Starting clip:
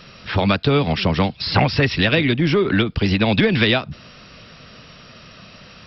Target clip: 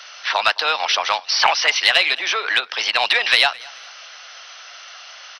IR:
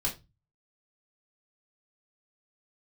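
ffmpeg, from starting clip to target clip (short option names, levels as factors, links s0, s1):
-af "highpass=f=720:w=0.5412,highpass=f=720:w=1.3066,acontrast=49,aecho=1:1:233|466:0.0708|0.0248,asetrate=48000,aresample=44100"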